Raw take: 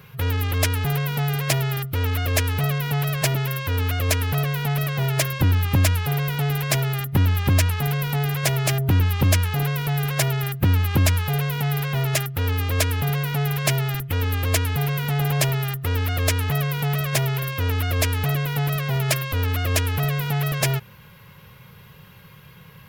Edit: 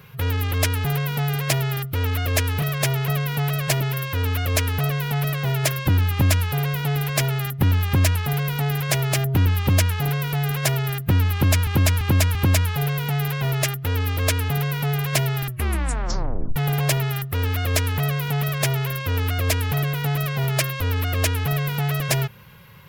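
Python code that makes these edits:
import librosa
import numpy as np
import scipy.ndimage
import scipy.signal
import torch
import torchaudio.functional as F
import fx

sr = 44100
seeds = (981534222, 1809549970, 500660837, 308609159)

y = fx.edit(x, sr, fx.repeat(start_s=10.87, length_s=0.34, count=4),
    fx.tape_stop(start_s=13.98, length_s=1.1),
    fx.duplicate(start_s=16.94, length_s=0.46, to_s=2.62), tone=tone)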